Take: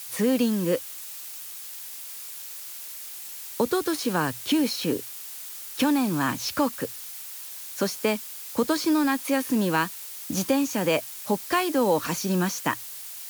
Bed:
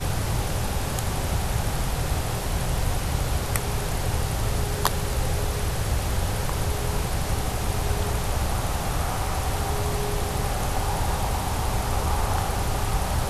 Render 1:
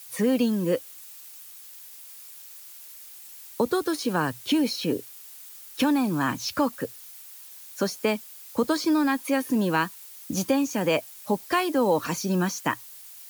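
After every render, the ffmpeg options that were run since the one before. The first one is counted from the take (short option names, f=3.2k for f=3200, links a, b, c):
-af "afftdn=nr=8:nf=-39"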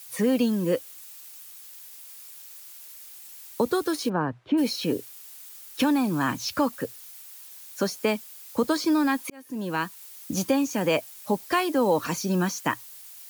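-filter_complex "[0:a]asplit=3[a][b][c];[a]afade=t=out:st=4.08:d=0.02[d];[b]lowpass=1.3k,afade=t=in:st=4.08:d=0.02,afade=t=out:st=4.57:d=0.02[e];[c]afade=t=in:st=4.57:d=0.02[f];[d][e][f]amix=inputs=3:normalize=0,asplit=2[g][h];[g]atrim=end=9.3,asetpts=PTS-STARTPTS,afade=t=out:st=9.296:d=0.004:c=hsin[i];[h]atrim=start=9.3,asetpts=PTS-STARTPTS,afade=t=in:d=0.75[j];[i][j]concat=n=2:v=0:a=1"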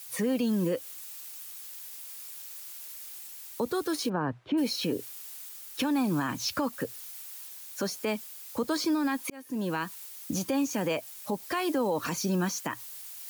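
-af "areverse,acompressor=mode=upward:threshold=-38dB:ratio=2.5,areverse,alimiter=limit=-20.5dB:level=0:latency=1:release=118"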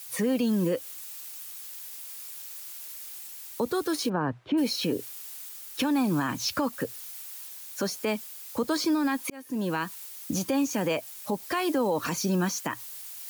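-af "volume=2dB"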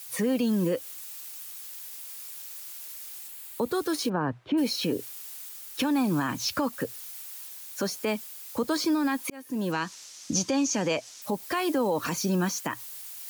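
-filter_complex "[0:a]asettb=1/sr,asplit=3[a][b][c];[a]atrim=end=3.284[d];[b]atrim=start=3.28:end=3.72,asetpts=PTS-STARTPTS,afade=t=in:d=0.004:c=qsin,afade=t=out:st=0.436:d=0.004:c=qsin,equalizer=f=5.7k:w=3:g=-7[e];[c]atrim=start=3.716[f];[d][e]acrossfade=d=0.004:c1=hsin:c2=qsin[g];[g][f]acrossfade=d=0.004:c1=qsin:c2=hsin,asettb=1/sr,asplit=3[h][i][j];[h]atrim=end=9.724[k];[i]atrim=start=9.72:end=11.22,asetpts=PTS-STARTPTS,afade=t=in:d=0.004:c=qsin,afade=t=out:st=1.496:d=0.004:c=qsin,lowpass=f=6k:t=q:w=2.7[l];[j]atrim=start=11.216[m];[k][l]acrossfade=d=0.004:c1=hsin:c2=qsin[n];[n][m]acrossfade=d=0.004:c1=qsin:c2=hsin"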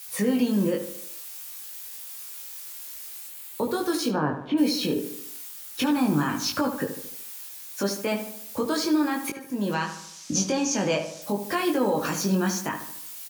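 -filter_complex "[0:a]asplit=2[a][b];[b]adelay=20,volume=-3dB[c];[a][c]amix=inputs=2:normalize=0,asplit=2[d][e];[e]adelay=74,lowpass=f=2.7k:p=1,volume=-8.5dB,asplit=2[f][g];[g]adelay=74,lowpass=f=2.7k:p=1,volume=0.52,asplit=2[h][i];[i]adelay=74,lowpass=f=2.7k:p=1,volume=0.52,asplit=2[j][k];[k]adelay=74,lowpass=f=2.7k:p=1,volume=0.52,asplit=2[l][m];[m]adelay=74,lowpass=f=2.7k:p=1,volume=0.52,asplit=2[n][o];[o]adelay=74,lowpass=f=2.7k:p=1,volume=0.52[p];[f][h][j][l][n][p]amix=inputs=6:normalize=0[q];[d][q]amix=inputs=2:normalize=0"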